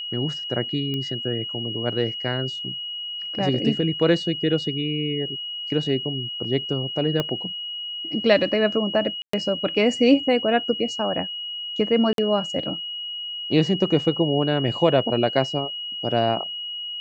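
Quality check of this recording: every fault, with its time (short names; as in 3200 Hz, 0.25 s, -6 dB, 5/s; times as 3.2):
tone 2900 Hz -29 dBFS
0.94 pop -17 dBFS
7.2 pop -10 dBFS
9.22–9.33 gap 0.114 s
12.13–12.18 gap 52 ms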